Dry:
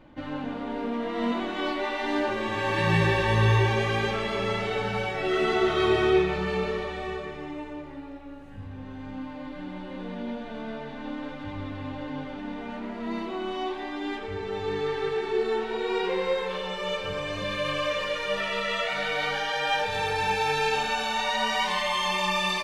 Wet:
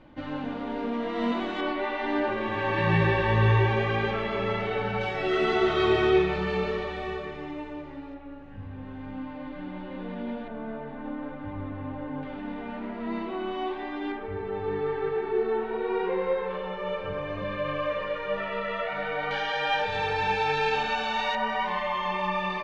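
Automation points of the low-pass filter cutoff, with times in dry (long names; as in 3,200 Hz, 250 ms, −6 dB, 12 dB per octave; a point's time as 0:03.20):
6,000 Hz
from 0:01.61 2,800 Hz
from 0:05.01 5,100 Hz
from 0:08.14 3,000 Hz
from 0:10.48 1,600 Hz
from 0:12.23 2,900 Hz
from 0:14.12 1,700 Hz
from 0:19.31 3,800 Hz
from 0:21.35 1,800 Hz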